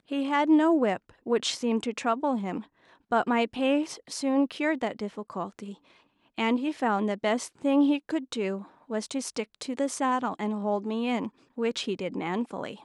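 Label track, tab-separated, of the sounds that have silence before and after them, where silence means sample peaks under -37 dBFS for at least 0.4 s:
3.120000	5.730000	sound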